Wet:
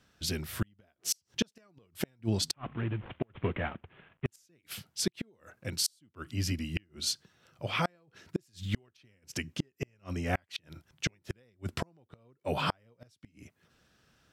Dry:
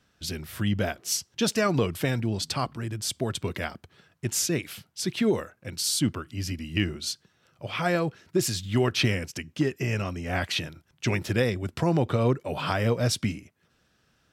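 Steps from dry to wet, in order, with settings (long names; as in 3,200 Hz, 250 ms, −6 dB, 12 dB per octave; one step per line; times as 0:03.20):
0:02.54–0:04.26: variable-slope delta modulation 16 kbit/s
gate with flip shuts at −17 dBFS, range −39 dB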